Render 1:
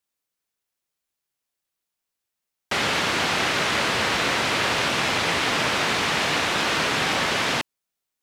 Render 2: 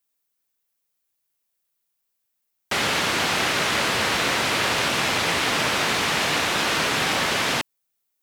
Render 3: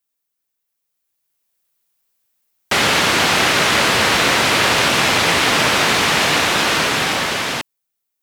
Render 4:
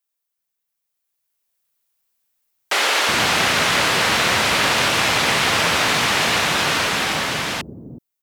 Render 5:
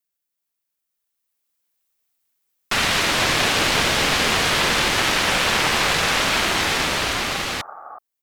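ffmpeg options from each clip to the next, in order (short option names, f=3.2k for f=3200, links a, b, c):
-af "highshelf=f=11k:g=11.5"
-af "dynaudnorm=f=250:g=11:m=11.5dB,volume=-1dB"
-filter_complex "[0:a]acrossover=split=340[a][b];[a]adelay=370[c];[c][b]amix=inputs=2:normalize=0,volume=-2.5dB"
-af "aeval=exprs='val(0)*sin(2*PI*650*n/s+650*0.55/0.26*sin(2*PI*0.26*n/s))':c=same,volume=1.5dB"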